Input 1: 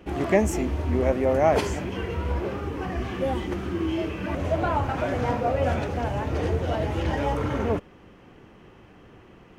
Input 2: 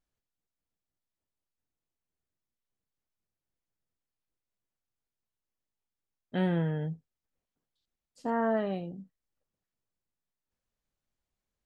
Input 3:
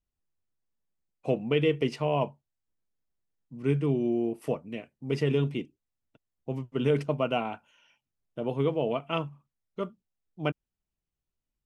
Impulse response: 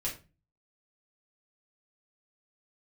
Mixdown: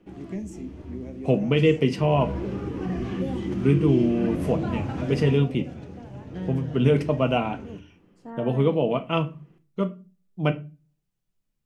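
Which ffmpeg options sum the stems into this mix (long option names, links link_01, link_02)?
-filter_complex "[0:a]lowpass=9500,equalizer=frequency=330:width_type=o:width=0.96:gain=6.5,acrossover=split=300|3000[link_01][link_02][link_03];[link_02]acompressor=threshold=-31dB:ratio=6[link_04];[link_01][link_04][link_03]amix=inputs=3:normalize=0,volume=-6dB,afade=type=in:start_time=1.89:duration=0.55:silence=0.281838,afade=type=out:start_time=5:duration=0.55:silence=0.266073,asplit=2[link_05][link_06];[link_06]volume=-8dB[link_07];[1:a]volume=-10.5dB[link_08];[2:a]volume=1.5dB,asplit=2[link_09][link_10];[link_10]volume=-8dB[link_11];[3:a]atrim=start_sample=2205[link_12];[link_07][link_11]amix=inputs=2:normalize=0[link_13];[link_13][link_12]afir=irnorm=-1:irlink=0[link_14];[link_05][link_08][link_09][link_14]amix=inputs=4:normalize=0,equalizer=frequency=180:width=1.7:gain=7.5"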